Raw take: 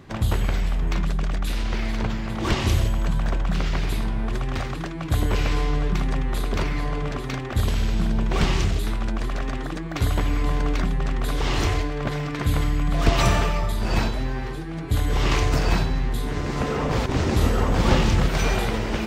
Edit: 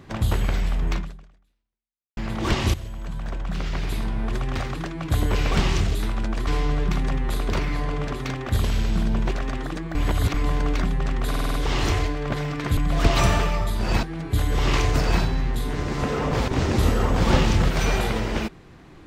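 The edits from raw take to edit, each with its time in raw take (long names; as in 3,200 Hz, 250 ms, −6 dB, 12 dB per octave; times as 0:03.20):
0:00.94–0:02.17: fade out exponential
0:02.74–0:04.30: fade in, from −15 dB
0:08.35–0:09.31: move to 0:05.51
0:09.95–0:10.34: reverse
0:11.29: stutter 0.05 s, 6 plays
0:12.52–0:12.79: remove
0:14.05–0:14.61: remove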